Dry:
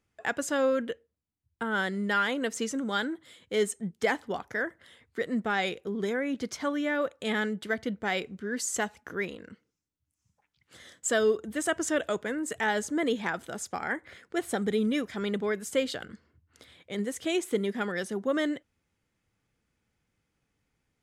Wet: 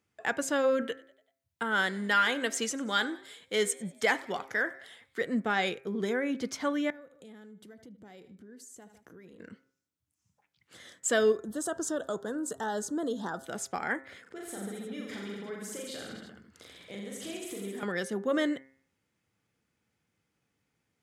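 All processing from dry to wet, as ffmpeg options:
-filter_complex "[0:a]asettb=1/sr,asplit=3[s0][s1][s2];[s0]atrim=end=0.824[s3];[s1]atrim=start=0.82:end=5.21,asetpts=PTS-STARTPTS,afade=t=in:d=0.004:c=qsin,afade=t=out:st=4.386:d=0.004:c=qsin,tiltshelf=f=780:g=-4,asplit=5[s4][s5][s6][s7][s8];[s5]adelay=96,afreqshift=52,volume=0.0794[s9];[s6]adelay=192,afreqshift=104,volume=0.0412[s10];[s7]adelay=288,afreqshift=156,volume=0.0214[s11];[s8]adelay=384,afreqshift=208,volume=0.0112[s12];[s4][s9][s10][s11][s12]amix=inputs=5:normalize=0,atrim=end_sample=193599[s13];[s2]atrim=start=5.206[s14];[s3][s13]acrossfade=d=0.004:c1=hsin:c2=qsin[s15];[s15][s14]acrossfade=d=0.004:c1=qsin:c2=hsin,asettb=1/sr,asplit=3[s16][s17][s18];[s16]atrim=end=6.904[s19];[s17]atrim=start=6.9:end=9.4,asetpts=PTS-STARTPTS,afade=t=in:d=0.004:c=qsin,afade=t=out:st=2.496:d=0.004:c=qsin,equalizer=f=2100:w=0.38:g=-12.5,aecho=1:1:77|154:0.112|0.0325,atrim=end_sample=110250,acompressor=threshold=0.00355:ratio=5:attack=3.2:release=140:knee=1:detection=peak[s20];[s18]atrim=start=9.396[s21];[s19][s20]acrossfade=d=0.004:c1=hsin:c2=qsin[s22];[s22][s21]acrossfade=d=0.004:c1=qsin:c2=hsin,asettb=1/sr,asplit=3[s23][s24][s25];[s23]atrim=end=11.324[s26];[s24]atrim=start=11.32:end=13.45,asetpts=PTS-STARTPTS,afade=t=in:d=0.004:c=qsin,afade=t=out:st=2.126:d=0.004:c=qsin,asuperstop=centerf=2300:order=4:qfactor=1.1,acompressor=threshold=0.0282:ratio=2:attack=3.2:release=140:knee=1:detection=peak[s27];[s25]atrim=start=13.446[s28];[s26][s27]acrossfade=d=0.004:c1=hsin:c2=qsin[s29];[s29][s28]acrossfade=d=0.004:c1=qsin:c2=hsin,asettb=1/sr,asplit=3[s30][s31][s32];[s30]atrim=end=14.224[s33];[s31]atrim=start=14.22:end=17.83,asetpts=PTS-STARTPTS,afade=t=in:d=0.004:c=qsin,afade=t=out:st=3.606:d=0.004:c=qsin,acompressor=threshold=0.01:ratio=8:attack=3.2:release=140:knee=1:detection=peak,aecho=1:1:40|86|138.9|199.7|269.7|350.1:0.794|0.631|0.501|0.398|0.316|0.251,atrim=end_sample=159201[s34];[s32]atrim=start=17.826[s35];[s33][s34]acrossfade=d=0.004:c1=hsin:c2=qsin[s36];[s36][s35]acrossfade=d=0.004:c1=qsin:c2=hsin,highpass=100,bandreject=f=133.8:t=h:w=4,bandreject=f=267.6:t=h:w=4,bandreject=f=401.4:t=h:w=4,bandreject=f=535.2:t=h:w=4,bandreject=f=669:t=h:w=4,bandreject=f=802.8:t=h:w=4,bandreject=f=936.6:t=h:w=4,bandreject=f=1070.4:t=h:w=4,bandreject=f=1204.2:t=h:w=4,bandreject=f=1338:t=h:w=4,bandreject=f=1471.8:t=h:w=4,bandreject=f=1605.6:t=h:w=4,bandreject=f=1739.4:t=h:w=4,bandreject=f=1873.2:t=h:w=4,bandreject=f=2007:t=h:w=4,bandreject=f=2140.8:t=h:w=4,bandreject=f=2274.6:t=h:w=4,bandreject=f=2408.4:t=h:w=4,bandreject=f=2542.2:t=h:w=4"

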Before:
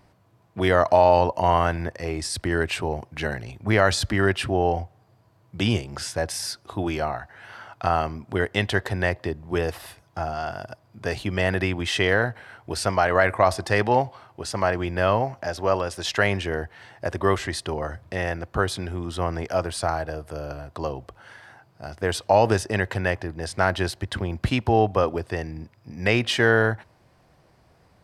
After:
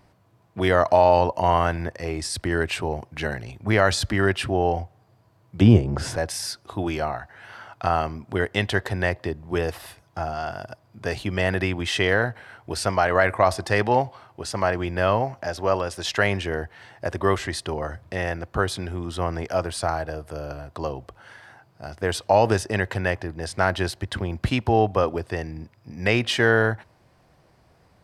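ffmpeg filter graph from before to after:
-filter_complex "[0:a]asettb=1/sr,asplit=3[s0][s1][s2];[s0]atrim=end=5.614[s3];[s1]atrim=start=5.61:end=6.16,asetpts=PTS-STARTPTS,afade=t=in:d=0.004:c=qsin,afade=t=out:st=0.546:d=0.004:c=qsin,tiltshelf=f=1300:g=10,acompressor=mode=upward:threshold=0.112:ratio=2.5:attack=3.2:release=140:knee=2.83:detection=peak[s4];[s2]atrim=start=6.156[s5];[s3][s4]acrossfade=d=0.004:c1=hsin:c2=qsin[s6];[s6][s5]acrossfade=d=0.004:c1=qsin:c2=hsin"

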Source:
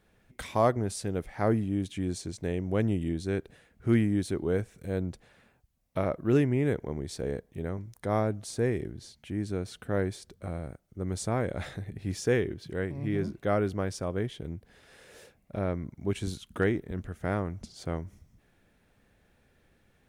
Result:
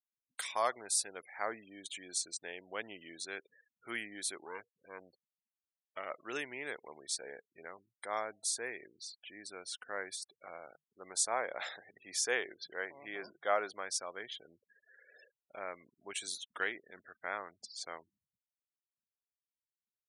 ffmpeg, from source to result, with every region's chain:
-filter_complex "[0:a]asettb=1/sr,asplit=3[s0][s1][s2];[s0]atrim=end=4.444[s3];[s1]atrim=start=4.44:end=6.1,asetpts=PTS-STARTPTS,afade=t=in:d=0.004:c=qsin,afade=t=out:st=1.656:d=0.004:c=qsin,highshelf=f=3700:g=-3,aeval=exprs='(tanh(12.6*val(0)+0.65)-tanh(0.65))/12.6':c=same[s4];[s2]atrim=start=6.096[s5];[s3][s4]acrossfade=d=0.004:c1=hsin:c2=qsin[s6];[s6][s5]acrossfade=d=0.004:c1=qsin:c2=hsin,asettb=1/sr,asplit=3[s7][s8][s9];[s7]atrim=end=10.164[s10];[s8]atrim=start=10.16:end=13.71,asetpts=PTS-STARTPTS,afade=t=in:d=0.004:c=qsin,afade=t=out:st=3.546:d=0.004:c=qsin,bandreject=f=50:t=h:w=6,bandreject=f=100:t=h:w=6,bandreject=f=150:t=h:w=6,adynamicequalizer=threshold=0.01:dfrequency=690:dqfactor=0.82:tfrequency=690:tqfactor=0.82:attack=5:release=100:ratio=0.375:range=3.5:mode=boostabove:tftype=bell[s11];[s9]atrim=start=13.706[s12];[s10][s11]acrossfade=d=0.004:c1=hsin:c2=qsin[s13];[s13][s12]acrossfade=d=0.004:c1=qsin:c2=hsin,afftfilt=real='re*gte(hypot(re,im),0.00447)':imag='im*gte(hypot(re,im),0.00447)':win_size=1024:overlap=0.75,highpass=960,highshelf=f=4200:g=12,volume=0.794"

